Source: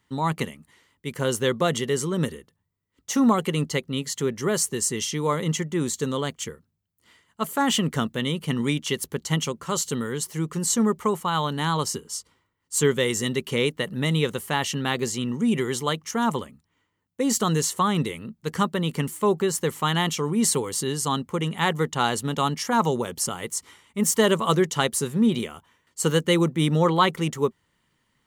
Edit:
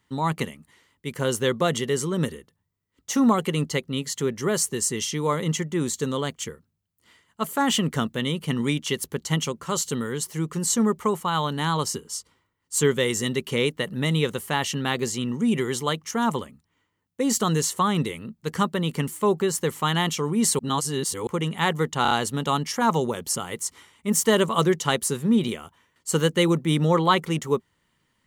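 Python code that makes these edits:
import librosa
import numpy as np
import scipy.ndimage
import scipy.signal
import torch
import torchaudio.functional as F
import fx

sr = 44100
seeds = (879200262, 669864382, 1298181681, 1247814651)

y = fx.edit(x, sr, fx.reverse_span(start_s=20.59, length_s=0.68),
    fx.stutter(start_s=22.02, slice_s=0.03, count=4), tone=tone)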